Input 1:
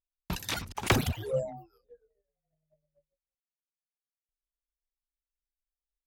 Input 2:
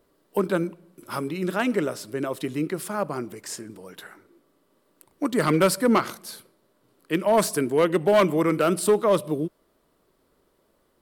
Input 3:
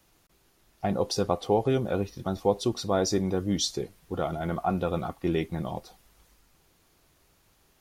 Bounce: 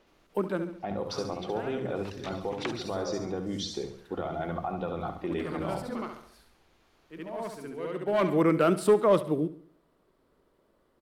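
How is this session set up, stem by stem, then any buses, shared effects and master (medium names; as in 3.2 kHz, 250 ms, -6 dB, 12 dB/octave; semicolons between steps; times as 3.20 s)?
-7.5 dB, 1.75 s, bus A, no send, no echo send, none
-1.5 dB, 0.00 s, no bus, no send, echo send -15.5 dB, treble shelf 4.6 kHz -11.5 dB; auto duck -20 dB, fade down 1.95 s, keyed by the third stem
+1.5 dB, 0.00 s, bus A, no send, echo send -10.5 dB, bass shelf 87 Hz +9.5 dB; compression, threshold -27 dBFS, peak gain reduction 10 dB; treble shelf 9.6 kHz -9 dB
bus A: 0.0 dB, band-pass 280–4000 Hz; peak limiter -22.5 dBFS, peak gain reduction 6 dB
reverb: none
echo: feedback delay 69 ms, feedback 44%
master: none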